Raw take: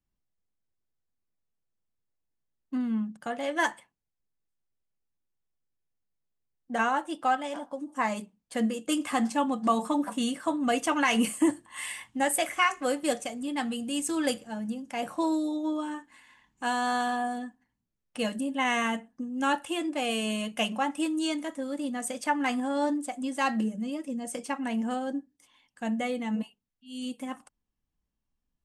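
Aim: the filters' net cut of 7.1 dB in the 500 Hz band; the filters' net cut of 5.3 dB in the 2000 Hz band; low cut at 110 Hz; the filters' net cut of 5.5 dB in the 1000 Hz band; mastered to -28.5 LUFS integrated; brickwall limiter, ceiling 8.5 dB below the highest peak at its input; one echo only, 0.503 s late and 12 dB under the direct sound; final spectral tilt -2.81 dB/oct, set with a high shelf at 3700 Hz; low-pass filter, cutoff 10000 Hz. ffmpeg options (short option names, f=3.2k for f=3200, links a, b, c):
-af "highpass=110,lowpass=10k,equalizer=f=500:t=o:g=-8,equalizer=f=1k:t=o:g=-3,equalizer=f=2k:t=o:g=-6.5,highshelf=f=3.7k:g=4.5,alimiter=limit=-22dB:level=0:latency=1,aecho=1:1:503:0.251,volume=5dB"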